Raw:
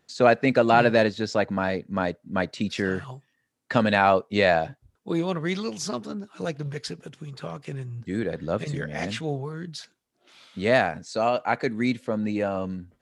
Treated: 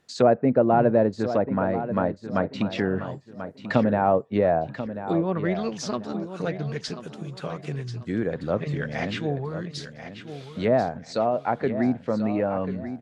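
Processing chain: low-pass that closes with the level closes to 760 Hz, closed at -19.5 dBFS; feedback delay 1038 ms, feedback 30%, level -11 dB; trim +1.5 dB

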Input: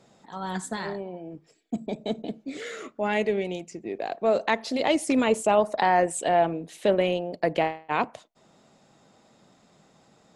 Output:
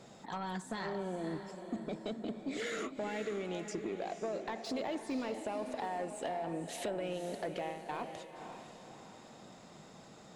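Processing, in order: de-esser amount 100%; peak limiter -16.5 dBFS, peak gain reduction 7 dB; compression 10:1, threshold -37 dBFS, peak gain reduction 16.5 dB; saturation -33 dBFS, distortion -17 dB; on a send: echo that smears into a reverb 517 ms, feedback 43%, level -8 dB; on the sum: trim +3.5 dB

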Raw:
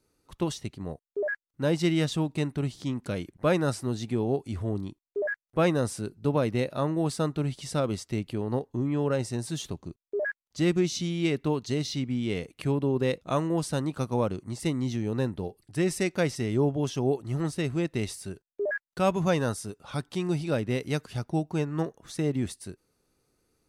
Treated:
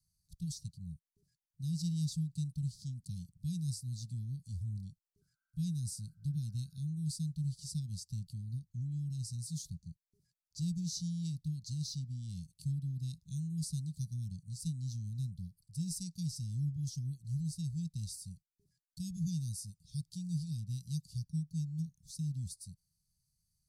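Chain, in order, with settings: painted sound noise, 5.21–6.80 s, 670–1600 Hz -18 dBFS; Chebyshev band-stop 170–4500 Hz, order 4; trim -4.5 dB

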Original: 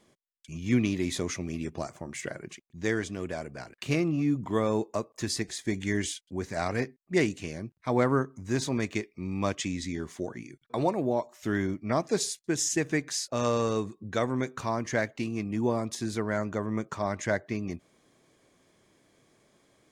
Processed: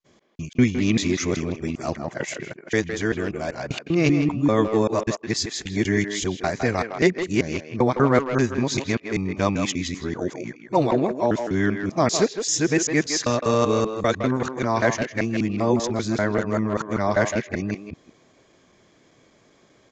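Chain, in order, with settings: time reversed locally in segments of 195 ms; speakerphone echo 160 ms, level -6 dB; resampled via 16 kHz; trim +7 dB

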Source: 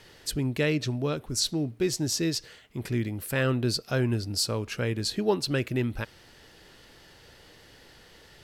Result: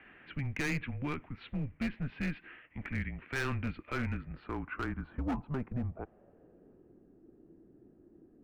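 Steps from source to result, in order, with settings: dynamic bell 670 Hz, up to -6 dB, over -44 dBFS, Q 1.9; mistuned SSB -140 Hz 170–3000 Hz; low-pass sweep 2.2 kHz -> 340 Hz, 4.00–7.07 s; overload inside the chain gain 24.5 dB; trim -4.5 dB

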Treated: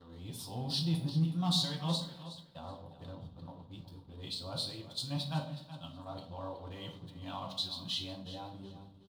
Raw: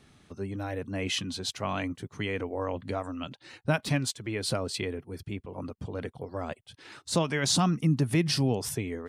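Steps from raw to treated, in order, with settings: reverse the whole clip; band-stop 470 Hz, Q 12; on a send at -1.5 dB: reverberation RT60 0.70 s, pre-delay 6 ms; on the sum: hysteresis with a dead band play -43 dBFS; FFT filter 120 Hz 0 dB, 190 Hz +4 dB, 330 Hz -7 dB, 610 Hz -1 dB, 940 Hz +4 dB, 2.2 kHz -18 dB, 3.7 kHz +6 dB, 6.1 kHz -15 dB; feedback delay 371 ms, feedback 23%, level -14 dB; in parallel at -10.5 dB: hard clipper -19.5 dBFS, distortion -9 dB; on the sum: pre-emphasis filter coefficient 0.8; comb of notches 210 Hz

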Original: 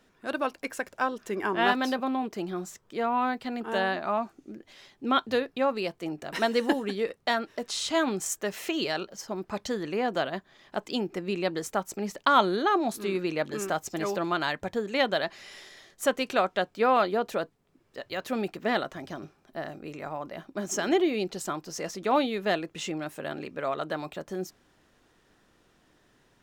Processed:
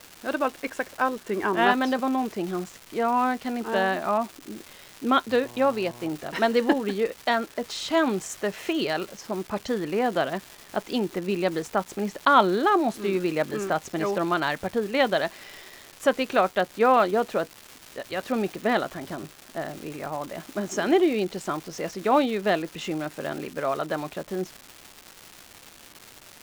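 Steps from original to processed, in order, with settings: low-pass 2.8 kHz 6 dB/octave; 5.42–6.08 s: mains buzz 120 Hz, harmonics 9, -50 dBFS -2 dB/octave; crackle 600 per s -37 dBFS; trim +4 dB

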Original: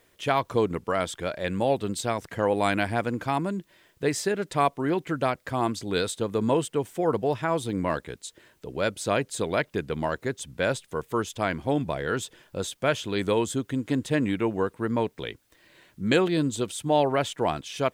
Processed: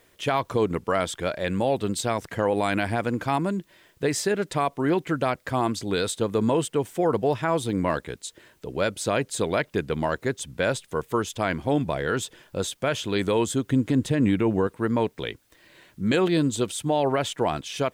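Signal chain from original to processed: 13.66–14.67 s: bass shelf 370 Hz +6.5 dB; peak limiter -16 dBFS, peak gain reduction 7.5 dB; trim +3 dB

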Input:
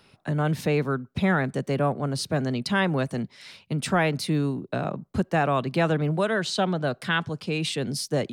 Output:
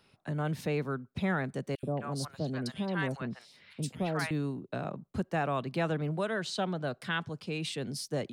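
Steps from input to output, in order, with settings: 1.75–4.31 s: three bands offset in time highs, lows, mids 80/220 ms, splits 830/3400 Hz; trim -8 dB

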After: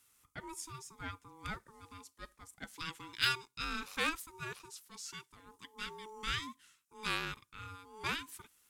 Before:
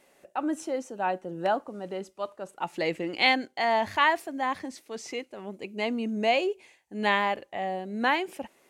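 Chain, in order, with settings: Chebyshev shaper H 7 -30 dB, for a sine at -8.5 dBFS; pre-emphasis filter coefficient 0.9; ring modulator 650 Hz; trim +4.5 dB

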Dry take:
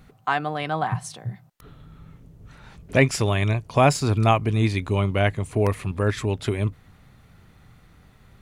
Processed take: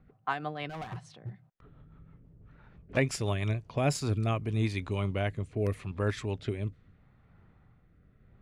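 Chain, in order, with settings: level-controlled noise filter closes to 1.7 kHz, open at -17.5 dBFS; 0.69–2.97 s: overload inside the chain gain 25.5 dB; rotary cabinet horn 6 Hz, later 0.8 Hz, at 3.32 s; trim -7 dB

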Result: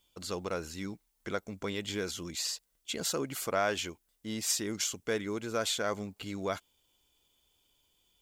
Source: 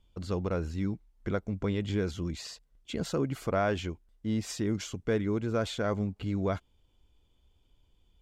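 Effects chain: RIAA curve recording

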